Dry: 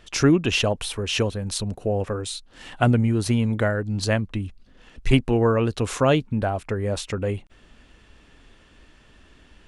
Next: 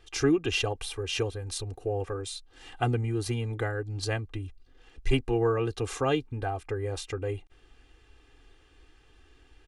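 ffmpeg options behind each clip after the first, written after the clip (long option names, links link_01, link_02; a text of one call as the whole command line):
ffmpeg -i in.wav -af "aecho=1:1:2.5:0.87,volume=-9dB" out.wav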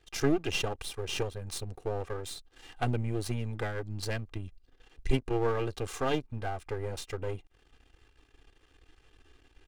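ffmpeg -i in.wav -af "aeval=exprs='if(lt(val(0),0),0.251*val(0),val(0))':channel_layout=same" out.wav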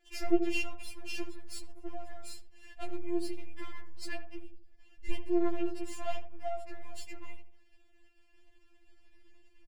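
ffmpeg -i in.wav -filter_complex "[0:a]asplit=2[link_01][link_02];[link_02]adelay=82,lowpass=frequency=880:poles=1,volume=-7.5dB,asplit=2[link_03][link_04];[link_04]adelay=82,lowpass=frequency=880:poles=1,volume=0.4,asplit=2[link_05][link_06];[link_06]adelay=82,lowpass=frequency=880:poles=1,volume=0.4,asplit=2[link_07][link_08];[link_08]adelay=82,lowpass=frequency=880:poles=1,volume=0.4,asplit=2[link_09][link_10];[link_10]adelay=82,lowpass=frequency=880:poles=1,volume=0.4[link_11];[link_01][link_03][link_05][link_07][link_09][link_11]amix=inputs=6:normalize=0,afftfilt=real='re*4*eq(mod(b,16),0)':imag='im*4*eq(mod(b,16),0)':win_size=2048:overlap=0.75,volume=-3.5dB" out.wav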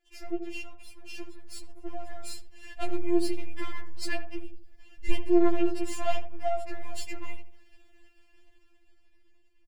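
ffmpeg -i in.wav -af "dynaudnorm=framelen=210:gausssize=17:maxgain=16dB,volume=-6.5dB" out.wav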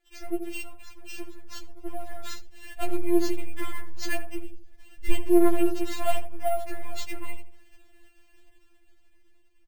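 ffmpeg -i in.wav -af "acrusher=samples=4:mix=1:aa=0.000001,volume=2.5dB" out.wav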